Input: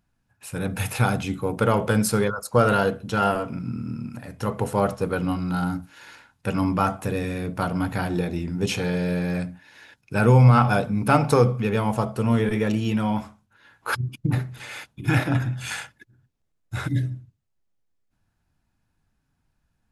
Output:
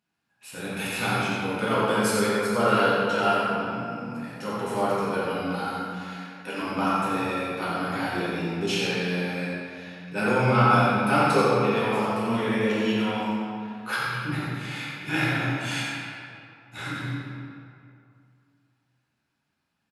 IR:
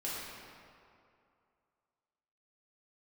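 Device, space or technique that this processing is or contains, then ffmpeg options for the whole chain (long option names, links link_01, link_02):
PA in a hall: -filter_complex "[0:a]asettb=1/sr,asplit=3[link_01][link_02][link_03];[link_01]atrim=end=5.564[link_04];[link_02]atrim=start=5.56:end=6.61,asetpts=PTS-STARTPTS,afade=type=in:duration=0.004:curve=qsin,afade=type=out:start_time=1.046:duration=0.004:curve=qsin,highpass=300[link_05];[link_03]atrim=start=6.606[link_06];[link_04][link_05]acrossfade=duration=0.004:curve1=hsin:curve2=qsin[link_07];[link_07][link_06]acrossfade=duration=0.004:curve1=qsin:curve2=hsin,highpass=160,equalizer=frequency=3100:width_type=o:width=1.9:gain=7.5,aecho=1:1:89:0.447[link_08];[1:a]atrim=start_sample=2205[link_09];[link_08][link_09]afir=irnorm=-1:irlink=0,volume=-5.5dB"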